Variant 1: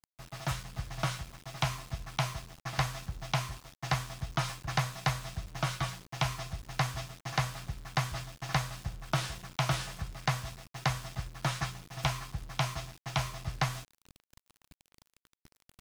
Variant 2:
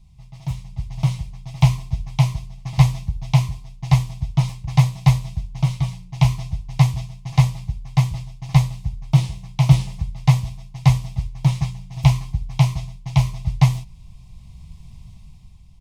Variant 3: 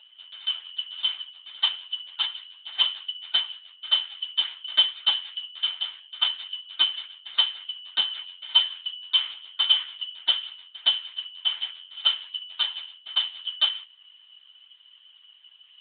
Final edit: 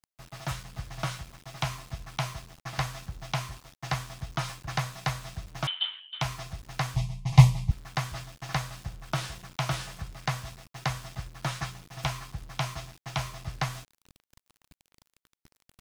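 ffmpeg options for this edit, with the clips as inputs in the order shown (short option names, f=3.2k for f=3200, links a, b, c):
-filter_complex "[0:a]asplit=3[a][b][c];[a]atrim=end=5.672[d];[2:a]atrim=start=5.668:end=6.212[e];[b]atrim=start=6.208:end=6.962[f];[1:a]atrim=start=6.958:end=7.712[g];[c]atrim=start=7.708[h];[d][e]acrossfade=d=0.004:c1=hsin:c2=hsin[i];[i][f]acrossfade=d=0.004:c1=hsin:c2=hsin[j];[j][g]acrossfade=d=0.004:c1=hsin:c2=hsin[k];[k][h]acrossfade=d=0.004:c1=hsin:c2=hsin"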